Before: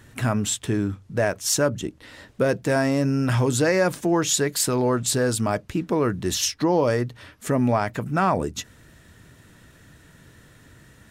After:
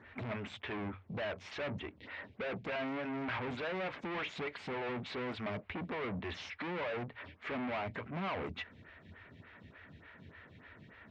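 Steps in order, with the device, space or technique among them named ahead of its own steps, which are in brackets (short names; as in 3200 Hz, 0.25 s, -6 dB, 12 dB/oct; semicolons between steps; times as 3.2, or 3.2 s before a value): vibe pedal into a guitar amplifier (photocell phaser 3.4 Hz; tube stage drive 36 dB, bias 0.3; speaker cabinet 83–3400 Hz, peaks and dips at 87 Hz +6 dB, 130 Hz -7 dB, 320 Hz -6 dB, 500 Hz -3 dB, 2200 Hz +7 dB); gain +1 dB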